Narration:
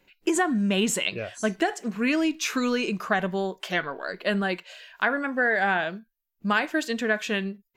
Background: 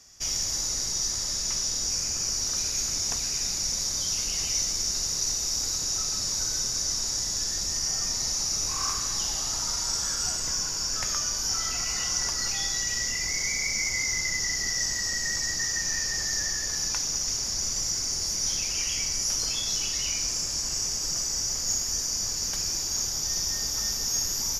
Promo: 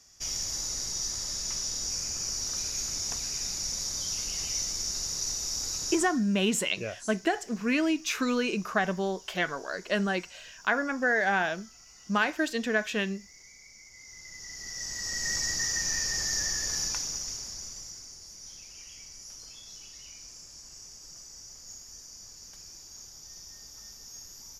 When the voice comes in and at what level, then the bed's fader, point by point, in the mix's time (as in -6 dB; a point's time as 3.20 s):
5.65 s, -2.5 dB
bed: 5.91 s -4.5 dB
6.26 s -24.5 dB
13.89 s -24.5 dB
15.31 s -1.5 dB
16.78 s -1.5 dB
18.19 s -18.5 dB